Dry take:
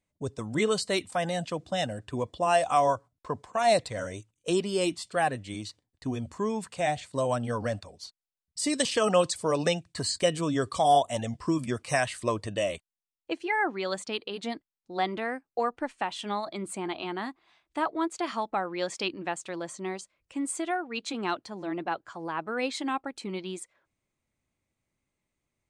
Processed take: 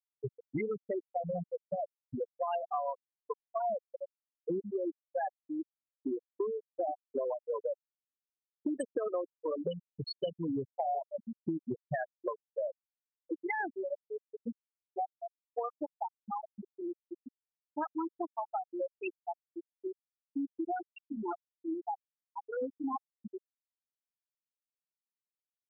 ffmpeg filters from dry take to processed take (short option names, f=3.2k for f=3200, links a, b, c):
-filter_complex "[0:a]asettb=1/sr,asplit=3[a][b][c];[a]atrim=end=5.374[d];[b]atrim=start=5.37:end=9.25,asetpts=PTS-STARTPTS,afade=t=in:d=0.004:c=qsin,afade=t=out:st=3.876:d=0.004:c=qsin,highpass=f=350:t=q:w=2.7[e];[c]atrim=start=9.246[f];[d][e]acrossfade=d=0.004:c1=hsin:c2=qsin[g];[g][f]acrossfade=d=0.004:c1=qsin:c2=hsin,afftfilt=real='re*gte(hypot(re,im),0.224)':imag='im*gte(hypot(re,im),0.224)':win_size=1024:overlap=0.75,acompressor=threshold=-31dB:ratio=10"